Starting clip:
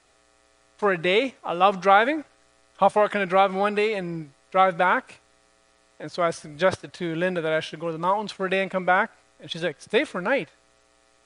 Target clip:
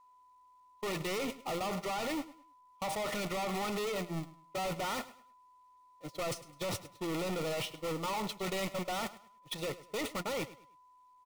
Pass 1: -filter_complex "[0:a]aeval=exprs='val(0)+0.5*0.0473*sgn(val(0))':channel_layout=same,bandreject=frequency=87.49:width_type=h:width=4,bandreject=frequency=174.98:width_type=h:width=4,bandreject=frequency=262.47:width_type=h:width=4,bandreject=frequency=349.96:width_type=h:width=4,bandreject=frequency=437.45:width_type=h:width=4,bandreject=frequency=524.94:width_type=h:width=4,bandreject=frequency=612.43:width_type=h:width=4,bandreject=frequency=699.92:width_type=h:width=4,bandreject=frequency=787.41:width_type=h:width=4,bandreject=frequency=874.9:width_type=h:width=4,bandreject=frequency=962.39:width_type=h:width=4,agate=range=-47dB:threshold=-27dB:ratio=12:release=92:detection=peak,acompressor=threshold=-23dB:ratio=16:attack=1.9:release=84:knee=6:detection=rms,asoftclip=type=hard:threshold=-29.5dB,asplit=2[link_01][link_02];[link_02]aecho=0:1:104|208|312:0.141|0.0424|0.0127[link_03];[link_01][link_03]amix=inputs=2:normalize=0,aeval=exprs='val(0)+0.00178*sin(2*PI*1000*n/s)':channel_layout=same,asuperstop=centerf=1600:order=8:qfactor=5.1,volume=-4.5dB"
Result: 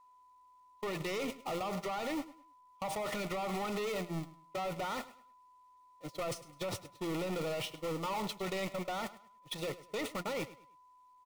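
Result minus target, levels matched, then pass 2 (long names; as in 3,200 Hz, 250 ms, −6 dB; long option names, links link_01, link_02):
downward compressor: peak gain reduction +9 dB
-filter_complex "[0:a]aeval=exprs='val(0)+0.5*0.0473*sgn(val(0))':channel_layout=same,bandreject=frequency=87.49:width_type=h:width=4,bandreject=frequency=174.98:width_type=h:width=4,bandreject=frequency=262.47:width_type=h:width=4,bandreject=frequency=349.96:width_type=h:width=4,bandreject=frequency=437.45:width_type=h:width=4,bandreject=frequency=524.94:width_type=h:width=4,bandreject=frequency=612.43:width_type=h:width=4,bandreject=frequency=699.92:width_type=h:width=4,bandreject=frequency=787.41:width_type=h:width=4,bandreject=frequency=874.9:width_type=h:width=4,bandreject=frequency=962.39:width_type=h:width=4,agate=range=-47dB:threshold=-27dB:ratio=12:release=92:detection=peak,acompressor=threshold=-13.5dB:ratio=16:attack=1.9:release=84:knee=6:detection=rms,asoftclip=type=hard:threshold=-29.5dB,asplit=2[link_01][link_02];[link_02]aecho=0:1:104|208|312:0.141|0.0424|0.0127[link_03];[link_01][link_03]amix=inputs=2:normalize=0,aeval=exprs='val(0)+0.00178*sin(2*PI*1000*n/s)':channel_layout=same,asuperstop=centerf=1600:order=8:qfactor=5.1,volume=-4.5dB"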